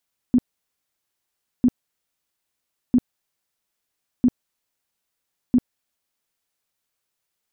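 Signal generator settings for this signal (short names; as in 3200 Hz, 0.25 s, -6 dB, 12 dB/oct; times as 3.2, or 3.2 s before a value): tone bursts 248 Hz, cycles 11, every 1.30 s, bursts 5, -11.5 dBFS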